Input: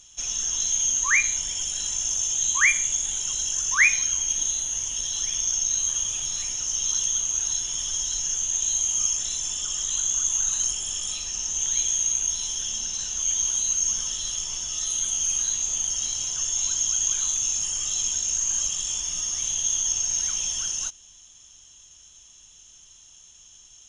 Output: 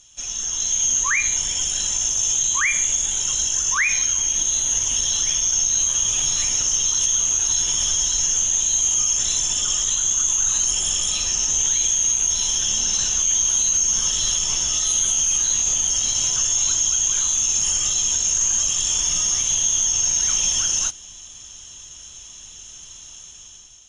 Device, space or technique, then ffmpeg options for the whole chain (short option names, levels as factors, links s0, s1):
low-bitrate web radio: -af "dynaudnorm=f=300:g=5:m=3.35,alimiter=limit=0.266:level=0:latency=1:release=38" -ar 32000 -c:a aac -b:a 48k